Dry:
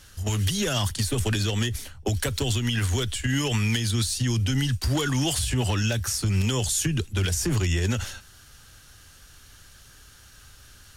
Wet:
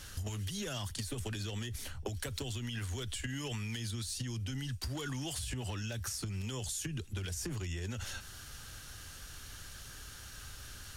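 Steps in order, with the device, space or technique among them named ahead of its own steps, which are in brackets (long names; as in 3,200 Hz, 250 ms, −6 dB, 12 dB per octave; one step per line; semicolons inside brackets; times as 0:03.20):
serial compression, peaks first (downward compressor, threshold −33 dBFS, peak gain reduction 12.5 dB; downward compressor 2.5 to 1, threshold −40 dBFS, peak gain reduction 7 dB)
level +2 dB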